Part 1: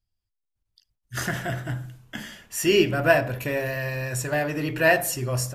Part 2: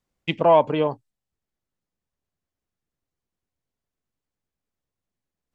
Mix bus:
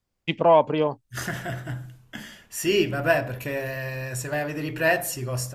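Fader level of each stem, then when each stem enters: -2.5, -1.0 dB; 0.00, 0.00 s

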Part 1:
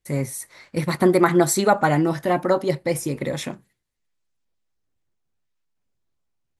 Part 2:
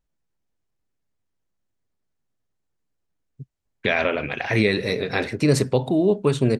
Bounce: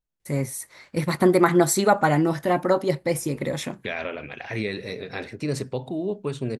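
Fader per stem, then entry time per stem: -1.0, -9.0 dB; 0.20, 0.00 s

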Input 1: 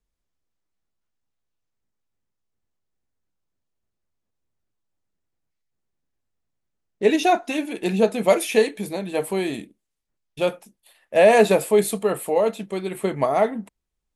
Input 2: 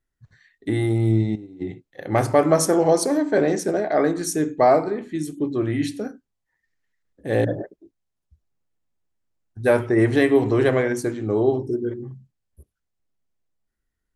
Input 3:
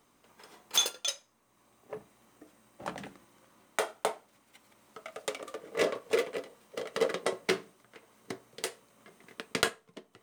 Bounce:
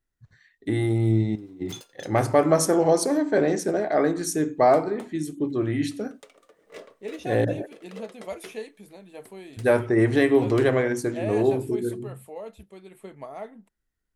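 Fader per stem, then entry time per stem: -18.0, -2.0, -14.5 dB; 0.00, 0.00, 0.95 s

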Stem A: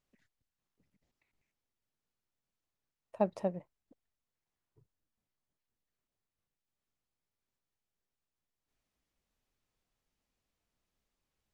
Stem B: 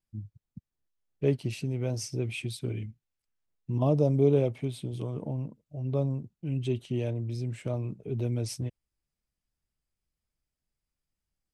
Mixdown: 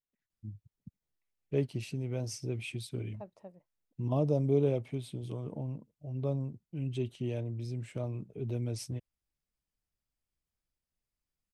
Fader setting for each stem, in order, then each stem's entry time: -16.5, -4.5 dB; 0.00, 0.30 s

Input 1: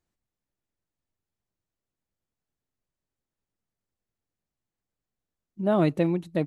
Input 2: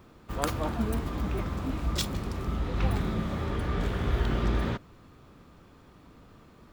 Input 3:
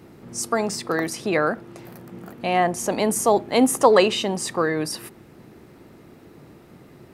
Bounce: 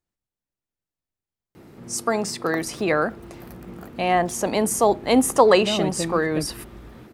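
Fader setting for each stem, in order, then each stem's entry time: -4.0, -17.0, 0.0 dB; 0.00, 2.30, 1.55 s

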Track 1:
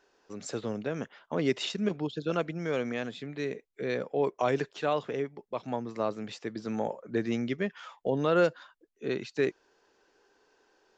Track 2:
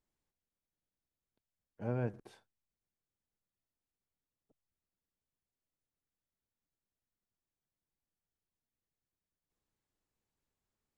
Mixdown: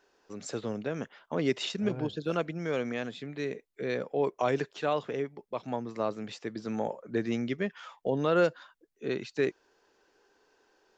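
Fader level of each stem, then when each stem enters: -0.5, -4.0 dB; 0.00, 0.00 s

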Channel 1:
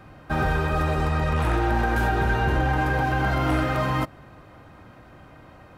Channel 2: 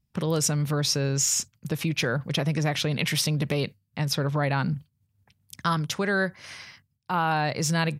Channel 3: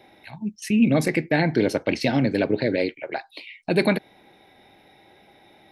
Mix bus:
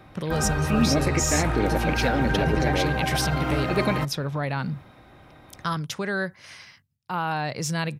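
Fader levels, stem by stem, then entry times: -3.5, -2.5, -4.5 dB; 0.00, 0.00, 0.00 s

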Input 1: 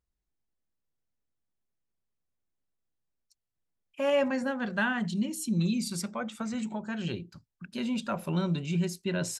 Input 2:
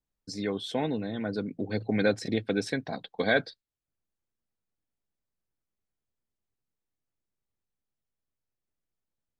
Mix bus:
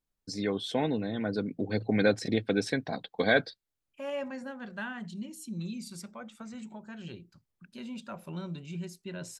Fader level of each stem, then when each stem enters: -9.5, +0.5 dB; 0.00, 0.00 s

